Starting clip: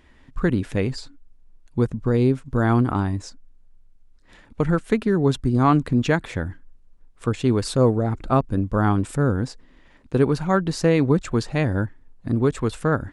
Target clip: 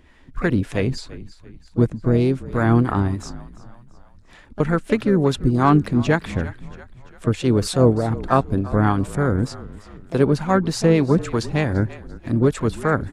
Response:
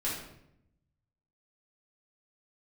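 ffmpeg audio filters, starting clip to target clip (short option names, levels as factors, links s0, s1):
-filter_complex "[0:a]asplit=5[s0][s1][s2][s3][s4];[s1]adelay=340,afreqshift=-39,volume=0.126[s5];[s2]adelay=680,afreqshift=-78,volume=0.0617[s6];[s3]adelay=1020,afreqshift=-117,volume=0.0302[s7];[s4]adelay=1360,afreqshift=-156,volume=0.0148[s8];[s0][s5][s6][s7][s8]amix=inputs=5:normalize=0,acrossover=split=500[s9][s10];[s9]aeval=exprs='val(0)*(1-0.5/2+0.5/2*cos(2*PI*3.3*n/s))':c=same[s11];[s10]aeval=exprs='val(0)*(1-0.5/2-0.5/2*cos(2*PI*3.3*n/s))':c=same[s12];[s11][s12]amix=inputs=2:normalize=0,asplit=2[s13][s14];[s14]asetrate=58866,aresample=44100,atempo=0.749154,volume=0.2[s15];[s13][s15]amix=inputs=2:normalize=0,volume=1.58"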